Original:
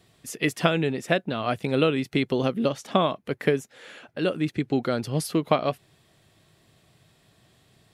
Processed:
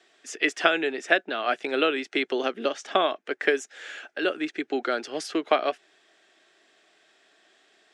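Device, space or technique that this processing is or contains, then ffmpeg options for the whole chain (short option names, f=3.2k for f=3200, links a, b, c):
phone speaker on a table: -filter_complex "[0:a]highpass=140,highpass=f=350:w=0.5412,highpass=f=350:w=1.3066,equalizer=f=510:t=q:w=4:g=-7,equalizer=f=1k:t=q:w=4:g=-7,equalizer=f=1.6k:t=q:w=4:g=6,equalizer=f=4.3k:t=q:w=4:g=-5,lowpass=f=7.1k:w=0.5412,lowpass=f=7.1k:w=1.3066,asettb=1/sr,asplit=3[a][b][c];[a]atrim=end=3.484[d];[b]atrim=start=3.48:end=4.18,asetpts=PTS-STARTPTS,afade=t=in:d=0.004:c=qsin,afade=t=out:st=0.696:d=0.004:c=qsin,aemphasis=mode=production:type=cd[e];[c]atrim=start=4.176[f];[d][e]acrossfade=d=0.004:c1=hsin:c2=qsin[g];[g][f]acrossfade=d=0.004:c1=qsin:c2=hsin,volume=3dB"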